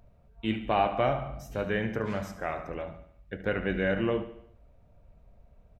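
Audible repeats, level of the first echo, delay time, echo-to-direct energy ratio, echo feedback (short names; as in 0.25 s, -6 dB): 4, -12.5 dB, 73 ms, -11.0 dB, 51%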